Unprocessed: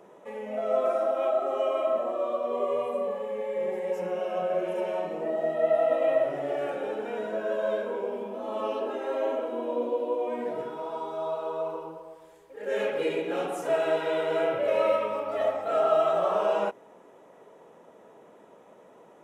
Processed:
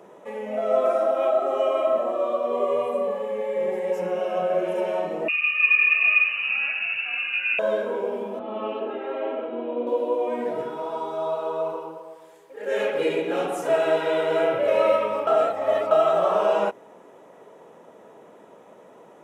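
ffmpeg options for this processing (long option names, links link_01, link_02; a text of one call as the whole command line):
ffmpeg -i in.wav -filter_complex "[0:a]asettb=1/sr,asplit=3[link_01][link_02][link_03];[link_01]atrim=end=5.284[link_04];[link_02]atrim=start=5.28:end=7.59,asetpts=PTS-STARTPTS,afade=type=in:duration=0.004:curve=qsin,afade=type=out:start_time=2.306:duration=0.004:curve=qsin,lowpass=frequency=2600:width_type=q:width=0.5098,lowpass=frequency=2600:width_type=q:width=0.6013,lowpass=frequency=2600:width_type=q:width=0.9,lowpass=frequency=2600:width_type=q:width=2.563,afreqshift=-3100[link_05];[link_03]atrim=start=7.586[link_06];[link_04][link_05]acrossfade=duration=0.004:curve1=hsin:curve2=qsin[link_07];[link_07][link_06]acrossfade=duration=0.004:curve1=qsin:curve2=hsin,asettb=1/sr,asplit=3[link_08][link_09][link_10];[link_08]atrim=end=8.394[link_11];[link_09]atrim=start=8.39:end=9.87,asetpts=PTS-STARTPTS,afade=type=in:duration=0.004:curve=qsin,afade=type=out:start_time=1.476:duration=0.004:curve=qsin,highpass=110,equalizer=frequency=190:width_type=q:width=4:gain=7,equalizer=frequency=270:width_type=q:width=4:gain=-5,equalizer=frequency=560:width_type=q:width=4:gain=-7,equalizer=frequency=1000:width_type=q:width=4:gain=-7,equalizer=frequency=1700:width_type=q:width=4:gain=-4,lowpass=frequency=3100:width=0.5412,lowpass=frequency=3100:width=1.3066[link_12];[link_10]atrim=start=9.866[link_13];[link_11][link_12]acrossfade=duration=0.004:curve1=hsin:curve2=qsin[link_14];[link_14][link_13]acrossfade=duration=0.004:curve1=qsin:curve2=hsin,asettb=1/sr,asplit=3[link_15][link_16][link_17];[link_15]atrim=end=11.724[link_18];[link_16]atrim=start=11.72:end=12.95,asetpts=PTS-STARTPTS,afade=type=in:duration=0.004:curve=qsin,afade=type=out:start_time=1.226:duration=0.004:curve=qsin,highpass=frequency=230:poles=1[link_19];[link_17]atrim=start=12.946[link_20];[link_18][link_19]acrossfade=duration=0.004:curve1=hsin:curve2=qsin[link_21];[link_21][link_20]acrossfade=duration=0.004:curve1=qsin:curve2=hsin,asplit=3[link_22][link_23][link_24];[link_22]atrim=end=15.272[link_25];[link_23]atrim=start=15.268:end=15.912,asetpts=PTS-STARTPTS,areverse[link_26];[link_24]atrim=start=15.908[link_27];[link_25][link_26]acrossfade=duration=0.004:curve1=hsin:curve2=hsin[link_28];[link_28][link_27]acrossfade=duration=0.004:curve1=hsin:curve2=hsin,highpass=59,volume=4.5dB" out.wav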